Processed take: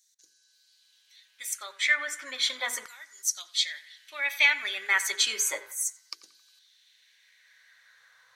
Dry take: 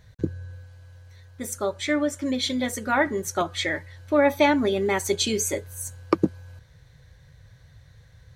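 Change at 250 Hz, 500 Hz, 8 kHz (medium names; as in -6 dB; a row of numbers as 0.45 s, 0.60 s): under -30 dB, -21.5 dB, +1.5 dB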